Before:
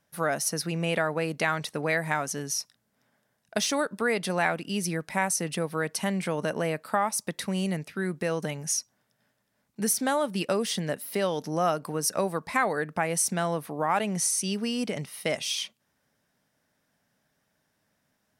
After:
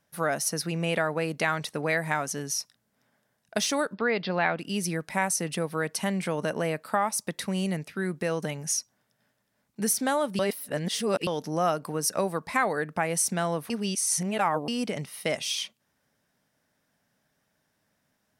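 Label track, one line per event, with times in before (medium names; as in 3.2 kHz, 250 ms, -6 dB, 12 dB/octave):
3.940000	4.590000	steep low-pass 5 kHz 72 dB/octave
10.390000	11.270000	reverse
13.700000	14.680000	reverse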